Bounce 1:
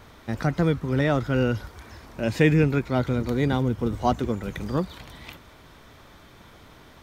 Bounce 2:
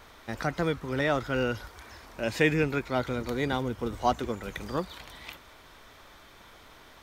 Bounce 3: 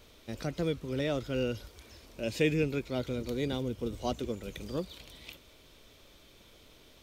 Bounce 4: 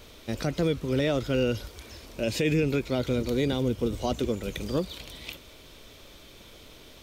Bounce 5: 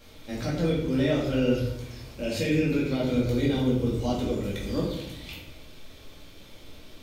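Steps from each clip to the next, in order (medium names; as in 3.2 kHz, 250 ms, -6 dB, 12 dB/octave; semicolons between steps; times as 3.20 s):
peaking EQ 130 Hz -10.5 dB 2.9 oct
high-order bell 1.2 kHz -11 dB; trim -2.5 dB
peak limiter -24.5 dBFS, peak gain reduction 9.5 dB; trim +8 dB
simulated room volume 260 m³, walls mixed, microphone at 2.2 m; trim -7.5 dB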